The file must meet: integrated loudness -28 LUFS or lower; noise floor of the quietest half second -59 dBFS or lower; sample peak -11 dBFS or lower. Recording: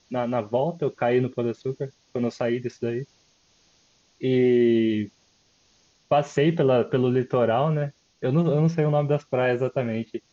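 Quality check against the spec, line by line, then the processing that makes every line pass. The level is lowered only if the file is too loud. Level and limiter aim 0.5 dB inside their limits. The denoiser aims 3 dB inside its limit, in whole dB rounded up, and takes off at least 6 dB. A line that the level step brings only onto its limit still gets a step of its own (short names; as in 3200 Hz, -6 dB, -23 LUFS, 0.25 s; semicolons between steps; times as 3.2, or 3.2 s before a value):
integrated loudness -24.0 LUFS: fail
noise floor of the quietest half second -63 dBFS: OK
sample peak -9.5 dBFS: fail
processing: gain -4.5 dB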